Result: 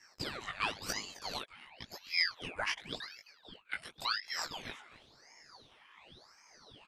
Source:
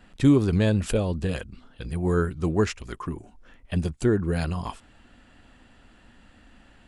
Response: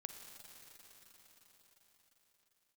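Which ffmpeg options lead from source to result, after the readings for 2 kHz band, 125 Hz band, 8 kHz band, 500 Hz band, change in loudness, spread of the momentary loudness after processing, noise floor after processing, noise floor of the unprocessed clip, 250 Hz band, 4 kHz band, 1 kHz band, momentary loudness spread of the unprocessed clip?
0.0 dB, −30.0 dB, −4.0 dB, −22.0 dB, −12.0 dB, 23 LU, −65 dBFS, −56 dBFS, −28.0 dB, +4.5 dB, −5.0 dB, 15 LU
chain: -filter_complex "[0:a]afftfilt=real='re*pow(10,15/40*sin(2*PI*(0.98*log(max(b,1)*sr/1024/100)/log(2)-(1.6)*(pts-256)/sr)))':imag='im*pow(10,15/40*sin(2*PI*(0.98*log(max(b,1)*sr/1024/100)/log(2)-(1.6)*(pts-256)/sr)))':win_size=1024:overlap=0.75,deesser=0.2,highshelf=frequency=2700:gain=-10,flanger=delay=18:depth=2.4:speed=0.45,highpass=frequency=1700:width_type=q:width=2,asoftclip=type=hard:threshold=-20.5dB,aeval=exprs='0.0944*(cos(1*acos(clip(val(0)/0.0944,-1,1)))-cos(1*PI/2))+0.00106*(cos(6*acos(clip(val(0)/0.0944,-1,1)))-cos(6*PI/2))':channel_layout=same,asplit=2[link_01][link_02];[link_02]adelay=262.4,volume=-14dB,highshelf=frequency=4000:gain=-5.9[link_03];[link_01][link_03]amix=inputs=2:normalize=0,aeval=exprs='val(0)*sin(2*PI*2000*n/s+2000*0.85/0.93*sin(2*PI*0.93*n/s))':channel_layout=same,volume=4dB"

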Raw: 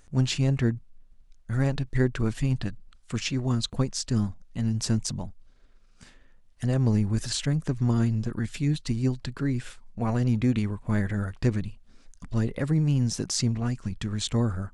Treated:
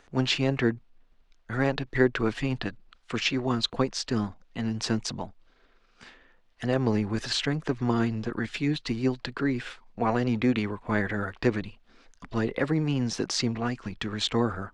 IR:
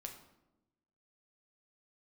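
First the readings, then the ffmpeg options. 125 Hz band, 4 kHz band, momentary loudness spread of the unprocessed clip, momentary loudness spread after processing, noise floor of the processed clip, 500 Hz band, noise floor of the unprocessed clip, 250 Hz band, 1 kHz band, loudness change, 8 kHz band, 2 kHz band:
−6.5 dB, +3.5 dB, 8 LU, 9 LU, −62 dBFS, +5.0 dB, −55 dBFS, 0.0 dB, +7.0 dB, −1.0 dB, −4.5 dB, +7.0 dB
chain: -filter_complex "[0:a]acrossover=split=290 4700:gain=0.178 1 0.1[link_01][link_02][link_03];[link_01][link_02][link_03]amix=inputs=3:normalize=0,bandreject=frequency=580:width=12,volume=7dB"

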